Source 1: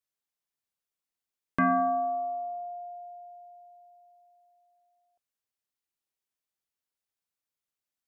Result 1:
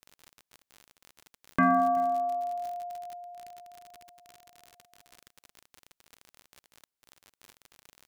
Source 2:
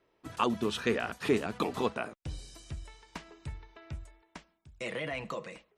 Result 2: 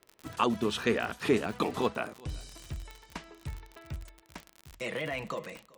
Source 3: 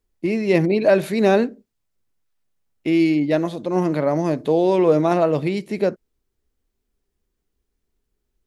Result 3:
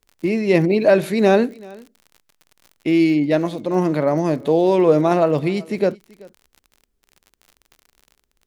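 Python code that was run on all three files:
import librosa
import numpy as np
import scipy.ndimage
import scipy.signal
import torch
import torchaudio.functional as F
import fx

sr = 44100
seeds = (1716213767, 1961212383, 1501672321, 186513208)

p1 = x + fx.echo_single(x, sr, ms=383, db=-23.5, dry=0)
p2 = fx.dmg_crackle(p1, sr, seeds[0], per_s=52.0, level_db=-36.0)
y = p2 * librosa.db_to_amplitude(1.5)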